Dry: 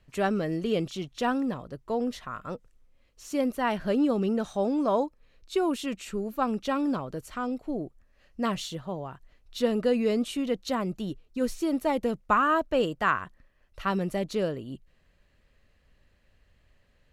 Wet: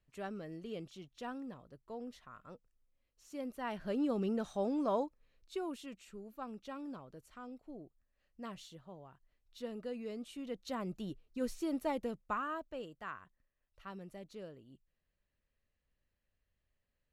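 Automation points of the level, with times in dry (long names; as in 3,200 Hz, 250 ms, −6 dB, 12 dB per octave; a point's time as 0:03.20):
0:03.29 −16.5 dB
0:04.19 −8 dB
0:04.94 −8 dB
0:06.09 −17.5 dB
0:10.18 −17.5 dB
0:10.92 −9 dB
0:11.88 −9 dB
0:12.86 −20 dB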